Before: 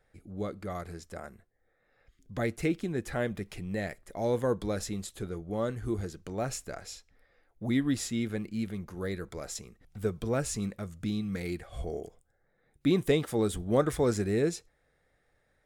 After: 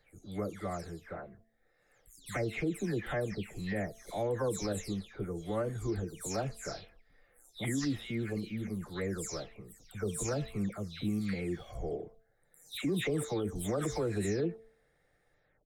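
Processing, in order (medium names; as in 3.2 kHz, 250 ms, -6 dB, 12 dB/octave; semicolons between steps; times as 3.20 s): delay that grows with frequency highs early, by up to 306 ms; de-hum 223.3 Hz, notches 3; peak limiter -24.5 dBFS, peak gain reduction 10.5 dB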